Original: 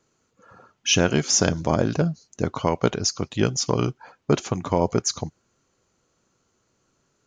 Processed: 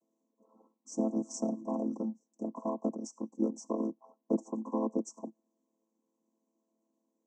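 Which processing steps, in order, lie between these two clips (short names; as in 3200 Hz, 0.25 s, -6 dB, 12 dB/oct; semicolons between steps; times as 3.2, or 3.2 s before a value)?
chord vocoder minor triad, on A3; Chebyshev band-stop 1100–5700 Hz, order 5; 1–3.39 dynamic EQ 440 Hz, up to -5 dB, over -33 dBFS, Q 1.5; gain -9 dB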